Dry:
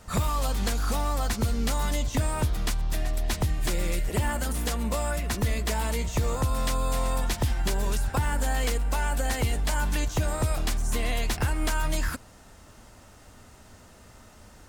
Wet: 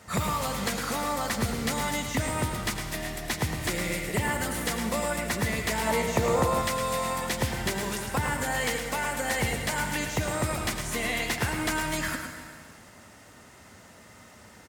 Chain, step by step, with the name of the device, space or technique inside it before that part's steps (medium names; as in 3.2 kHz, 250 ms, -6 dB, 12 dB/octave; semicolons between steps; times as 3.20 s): PA in a hall (high-pass 110 Hz 12 dB/octave; peaking EQ 2 kHz +6.5 dB 0.39 oct; delay 109 ms -7.5 dB; reverberation RT60 1.8 s, pre-delay 78 ms, DRR 7.5 dB); 5.87–6.62 s: peaking EQ 610 Hz +7.5 dB 1.9 oct